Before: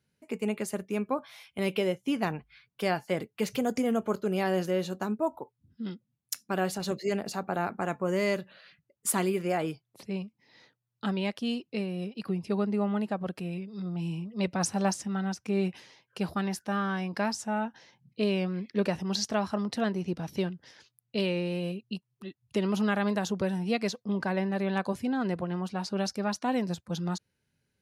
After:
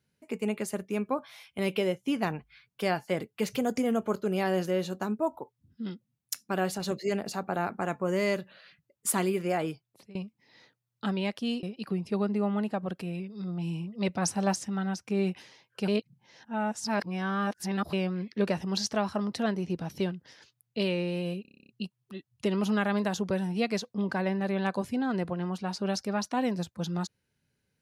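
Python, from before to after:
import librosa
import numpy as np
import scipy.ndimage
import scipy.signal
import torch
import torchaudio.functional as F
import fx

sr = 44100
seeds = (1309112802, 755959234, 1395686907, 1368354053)

y = fx.edit(x, sr, fx.fade_out_to(start_s=9.56, length_s=0.59, curve='qsin', floor_db=-20.5),
    fx.cut(start_s=11.63, length_s=0.38),
    fx.reverse_span(start_s=16.26, length_s=2.05),
    fx.stutter(start_s=21.8, slice_s=0.03, count=10), tone=tone)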